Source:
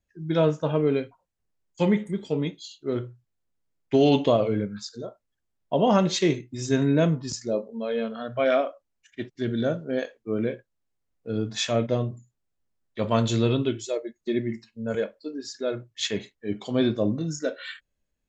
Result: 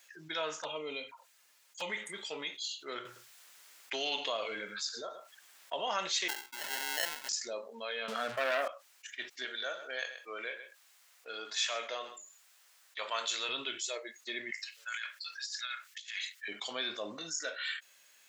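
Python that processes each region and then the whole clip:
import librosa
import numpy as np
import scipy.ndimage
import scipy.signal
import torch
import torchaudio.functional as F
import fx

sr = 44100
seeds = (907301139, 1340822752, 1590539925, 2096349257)

y = fx.chain(x, sr, fx.notch_comb(f0_hz=380.0),
    fx.env_flanger(rest_ms=7.8, full_db=-24.5), at=(0.63, 1.9))
y = fx.chain(y, sr, fx.echo_single(ms=109, db=-18.0),
    fx.band_squash(depth_pct=40), at=(3.05, 5.76))
y = fx.chain(y, sr, fx.weighting(curve='A'),
    fx.sample_hold(seeds[0], rate_hz=1200.0, jitter_pct=0), at=(6.28, 7.29))
y = fx.chain(y, sr, fx.tilt_eq(slope=-4.0),
    fx.leveller(passes=2),
    fx.band_squash(depth_pct=40), at=(8.08, 8.68))
y = fx.chain(y, sr, fx.highpass(hz=450.0, slope=12),
    fx.echo_single(ms=129, db=-21.0), at=(9.45, 13.49))
y = fx.chain(y, sr, fx.highpass(hz=1400.0, slope=24),
    fx.over_compress(threshold_db=-44.0, ratio=-0.5), at=(14.51, 16.48))
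y = scipy.signal.sosfilt(scipy.signal.butter(2, 1400.0, 'highpass', fs=sr, output='sos'), y)
y = fx.env_flatten(y, sr, amount_pct=50)
y = y * 10.0 ** (-5.0 / 20.0)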